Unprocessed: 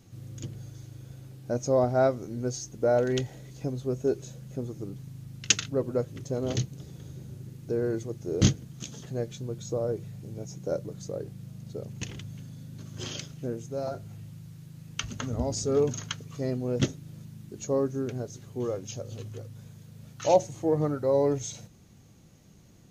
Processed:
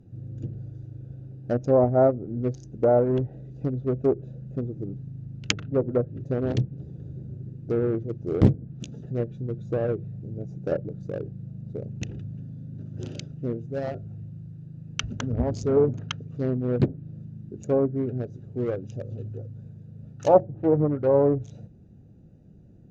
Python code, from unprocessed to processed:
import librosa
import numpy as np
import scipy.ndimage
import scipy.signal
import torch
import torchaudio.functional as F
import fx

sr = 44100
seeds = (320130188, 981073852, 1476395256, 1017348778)

y = fx.wiener(x, sr, points=41)
y = fx.env_lowpass_down(y, sr, base_hz=980.0, full_db=-23.0)
y = fx.doppler_dist(y, sr, depth_ms=0.8)
y = y * 10.0 ** (5.0 / 20.0)